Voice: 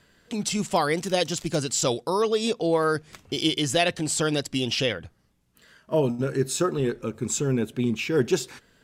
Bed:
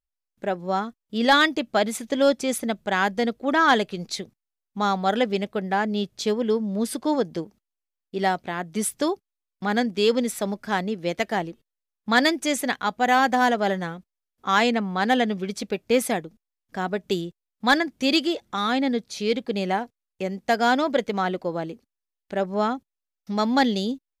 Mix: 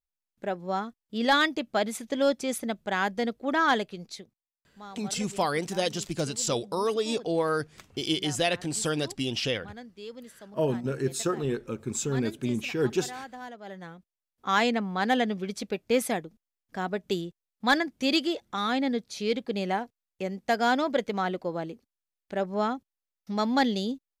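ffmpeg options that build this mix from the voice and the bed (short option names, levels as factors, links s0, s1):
-filter_complex "[0:a]adelay=4650,volume=0.631[s0];[1:a]volume=4.22,afade=t=out:st=3.65:d=0.87:silence=0.149624,afade=t=in:st=13.63:d=0.82:silence=0.133352[s1];[s0][s1]amix=inputs=2:normalize=0"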